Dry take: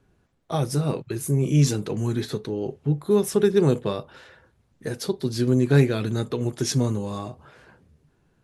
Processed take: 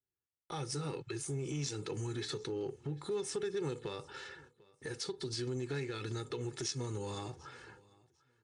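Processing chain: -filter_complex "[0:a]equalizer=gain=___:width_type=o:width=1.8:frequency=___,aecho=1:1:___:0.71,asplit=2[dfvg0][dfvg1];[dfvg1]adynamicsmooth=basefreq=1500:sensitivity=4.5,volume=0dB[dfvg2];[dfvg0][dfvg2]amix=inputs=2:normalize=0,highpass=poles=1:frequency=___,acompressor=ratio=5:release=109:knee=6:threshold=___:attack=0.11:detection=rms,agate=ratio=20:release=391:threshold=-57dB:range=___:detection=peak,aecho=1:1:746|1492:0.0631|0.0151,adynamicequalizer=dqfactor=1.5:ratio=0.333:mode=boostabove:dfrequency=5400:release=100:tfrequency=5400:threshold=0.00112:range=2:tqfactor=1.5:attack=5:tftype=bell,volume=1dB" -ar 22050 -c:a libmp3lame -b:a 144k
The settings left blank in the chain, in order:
-12, 600, 2.3, 410, -34dB, -31dB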